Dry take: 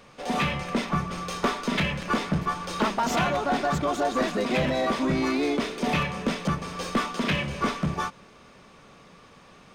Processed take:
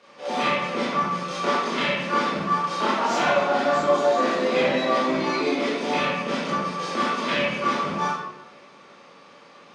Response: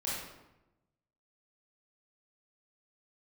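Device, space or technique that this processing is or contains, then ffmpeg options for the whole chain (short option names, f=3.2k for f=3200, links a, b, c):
supermarket ceiling speaker: -filter_complex "[0:a]highpass=300,lowpass=6.5k[a];[1:a]atrim=start_sample=2205[b];[a][b]afir=irnorm=-1:irlink=0"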